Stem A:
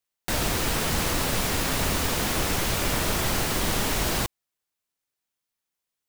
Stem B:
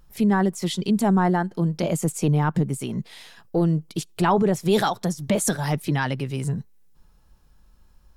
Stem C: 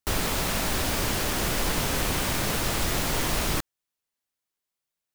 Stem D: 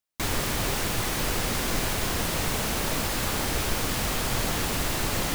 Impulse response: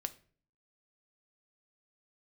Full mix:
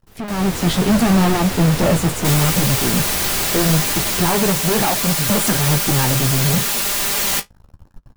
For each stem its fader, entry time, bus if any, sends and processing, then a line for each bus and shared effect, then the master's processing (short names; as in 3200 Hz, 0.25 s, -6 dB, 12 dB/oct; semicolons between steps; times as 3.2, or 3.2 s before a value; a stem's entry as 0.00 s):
-3.5 dB, 0.00 s, no send, dry
-11.5 dB, 0.00 s, no send, tilt shelf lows +6.5 dB, about 1400 Hz; sample leveller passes 5
-18.5 dB, 0.00 s, no send, auto duck -7 dB, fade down 0.20 s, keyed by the second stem
-0.5 dB, 2.05 s, no send, tilt +2.5 dB/oct; comb 5 ms, depth 77%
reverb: off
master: AGC; flange 0.74 Hz, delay 8.2 ms, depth 9.9 ms, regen -39%